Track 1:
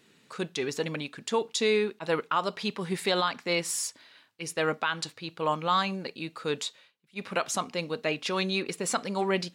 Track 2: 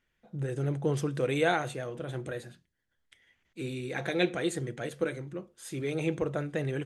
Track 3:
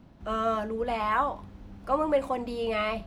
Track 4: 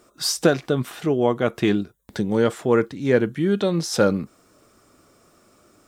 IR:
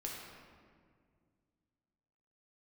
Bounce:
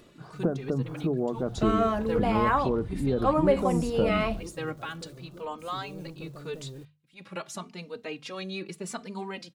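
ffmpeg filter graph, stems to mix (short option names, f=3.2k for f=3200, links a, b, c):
-filter_complex "[0:a]acompressor=mode=upward:threshold=-44dB:ratio=2.5,asplit=2[a][b];[b]adelay=3.1,afreqshift=0.81[c];[a][c]amix=inputs=2:normalize=1,volume=-6dB[d];[1:a]asoftclip=type=tanh:threshold=-29.5dB,acrusher=bits=7:mix=0:aa=0.000001,volume=-11.5dB[e];[2:a]adelay=1350,volume=0.5dB[f];[3:a]lowpass=f=1.6k:w=0.5412,lowpass=f=1.6k:w=1.3066,bandreject=f=60:t=h:w=6,bandreject=f=120:t=h:w=6,volume=-1.5dB,asplit=2[g][h];[h]apad=whole_len=420963[i];[d][i]sidechaincompress=threshold=-31dB:ratio=3:attack=6.9:release=126[j];[e][g]amix=inputs=2:normalize=0,equalizer=f=2.1k:w=1.3:g=-14,acompressor=threshold=-32dB:ratio=2.5,volume=0dB[k];[j][f][k]amix=inputs=3:normalize=0,lowshelf=f=220:g=10,bandreject=f=50:t=h:w=6,bandreject=f=100:t=h:w=6,bandreject=f=150:t=h:w=6,bandreject=f=200:t=h:w=6"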